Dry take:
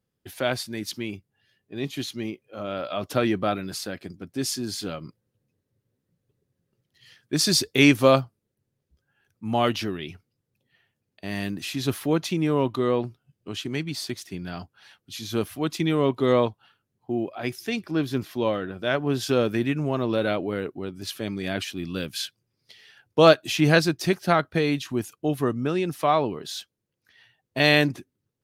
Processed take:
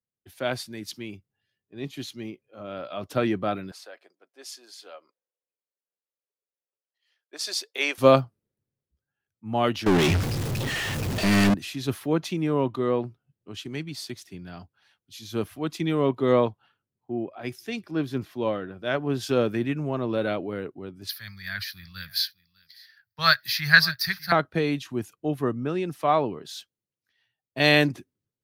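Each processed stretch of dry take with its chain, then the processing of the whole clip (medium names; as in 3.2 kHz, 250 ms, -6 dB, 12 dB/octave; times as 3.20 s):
3.71–7.98 s: high-pass 550 Hz 24 dB/octave + tilt EQ -2.5 dB/octave
9.86–11.54 s: jump at every zero crossing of -37.5 dBFS + treble shelf 9.6 kHz -8.5 dB + waveshaping leveller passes 5
21.09–24.32 s: FFT filter 100 Hz 0 dB, 190 Hz -8 dB, 300 Hz -29 dB, 510 Hz -23 dB, 1.8 kHz +11 dB, 2.9 kHz -8 dB, 4.6 kHz +12 dB, 7.4 kHz -14 dB, 14 kHz +15 dB + delay 602 ms -19.5 dB
whole clip: peaking EQ 12 kHz -2.5 dB 2.8 oct; three bands expanded up and down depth 40%; trim -2 dB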